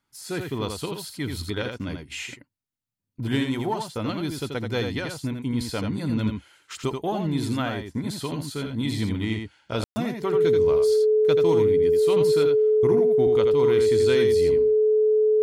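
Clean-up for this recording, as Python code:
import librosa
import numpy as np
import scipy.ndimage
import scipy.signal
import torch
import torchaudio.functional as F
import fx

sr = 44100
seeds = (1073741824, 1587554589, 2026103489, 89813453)

y = fx.notch(x, sr, hz=430.0, q=30.0)
y = fx.fix_ambience(y, sr, seeds[0], print_start_s=2.83, print_end_s=3.33, start_s=9.84, end_s=9.96)
y = fx.fix_echo_inverse(y, sr, delay_ms=83, level_db=-5.5)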